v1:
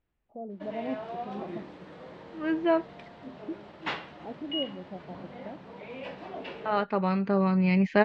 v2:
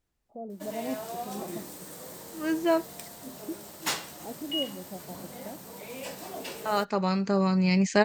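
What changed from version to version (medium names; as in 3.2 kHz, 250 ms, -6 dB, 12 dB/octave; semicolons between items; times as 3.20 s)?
master: remove low-pass 3.1 kHz 24 dB/octave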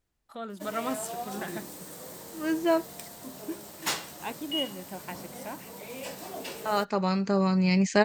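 first voice: remove steep low-pass 750 Hz 48 dB/octave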